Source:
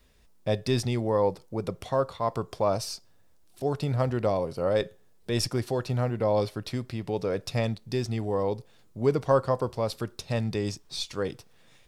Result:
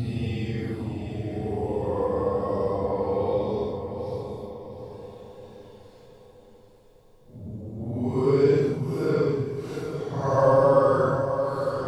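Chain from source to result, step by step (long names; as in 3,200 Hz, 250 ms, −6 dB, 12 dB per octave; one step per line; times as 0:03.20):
extreme stretch with random phases 8.7×, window 0.05 s, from 0:08.11
feedback delay with all-pass diffusion 767 ms, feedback 45%, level −8 dB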